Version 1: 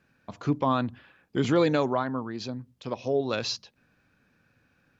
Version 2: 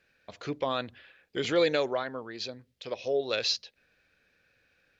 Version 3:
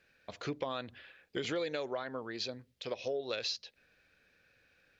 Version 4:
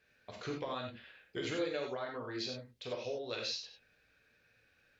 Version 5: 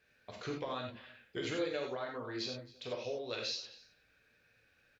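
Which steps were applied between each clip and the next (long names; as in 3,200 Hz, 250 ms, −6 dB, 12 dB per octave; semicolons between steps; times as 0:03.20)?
octave-band graphic EQ 125/250/500/1,000/2,000/4,000 Hz −9/−9/+6/−8/+6/+6 dB; level −2.5 dB
downward compressor 6 to 1, threshold −33 dBFS, peak gain reduction 12.5 dB
reverb whose tail is shaped and stops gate 120 ms flat, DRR −0.5 dB; level −4.5 dB
single-tap delay 268 ms −21.5 dB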